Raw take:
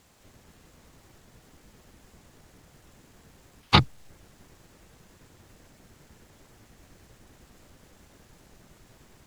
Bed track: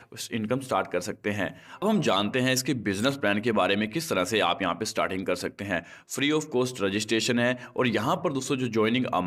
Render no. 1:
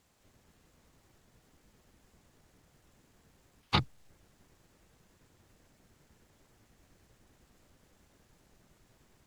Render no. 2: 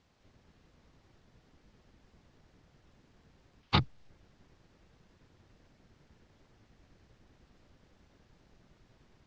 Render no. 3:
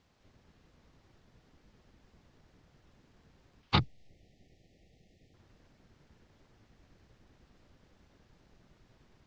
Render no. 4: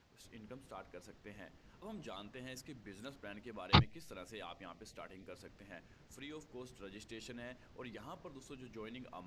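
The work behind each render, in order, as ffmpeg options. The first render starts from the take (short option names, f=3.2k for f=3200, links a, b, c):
-af "volume=-10dB"
-af "lowpass=f=5.6k:w=0.5412,lowpass=f=5.6k:w=1.3066,lowshelf=f=340:g=3"
-filter_complex "[0:a]asettb=1/sr,asplit=3[a][b][c];[a]atrim=end=3.814[d];[b]atrim=start=3.81:end=5.34,asetpts=PTS-STARTPTS,afade=t=in:d=0.004:c=qsin,afade=t=out:st=1.526:d=0.004:c=qsin,asuperstop=centerf=1200:order=20:qfactor=1.2[e];[c]atrim=start=5.336[f];[d][e]acrossfade=d=0.004:c1=hsin:c2=qsin[g];[g][f]acrossfade=d=0.004:c1=qsin:c2=hsin"
-filter_complex "[1:a]volume=-25dB[a];[0:a][a]amix=inputs=2:normalize=0"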